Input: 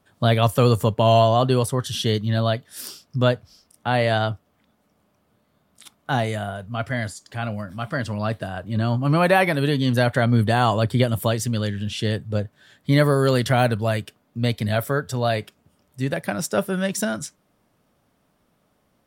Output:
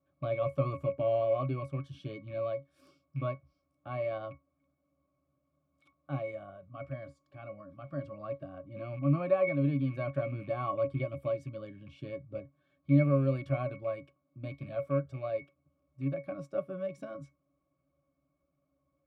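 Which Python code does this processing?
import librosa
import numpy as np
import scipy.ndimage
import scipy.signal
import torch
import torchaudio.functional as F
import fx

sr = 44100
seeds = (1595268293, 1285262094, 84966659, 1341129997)

y = fx.rattle_buzz(x, sr, strikes_db=-23.0, level_db=-25.0)
y = fx.bass_treble(y, sr, bass_db=-6, treble_db=0)
y = fx.octave_resonator(y, sr, note='C#', decay_s=0.15)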